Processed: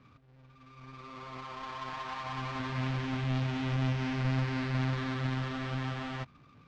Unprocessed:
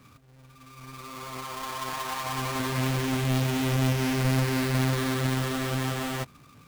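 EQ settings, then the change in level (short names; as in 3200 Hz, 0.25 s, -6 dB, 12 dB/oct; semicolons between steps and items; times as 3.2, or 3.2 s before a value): LPF 6600 Hz 12 dB/oct; dynamic EQ 430 Hz, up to -7 dB, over -44 dBFS, Q 1.5; air absorption 160 m; -4.5 dB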